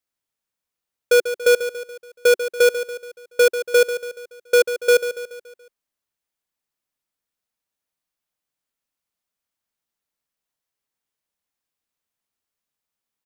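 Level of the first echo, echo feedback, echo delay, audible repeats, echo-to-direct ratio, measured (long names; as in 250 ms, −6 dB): −11.0 dB, 49%, 142 ms, 4, −10.0 dB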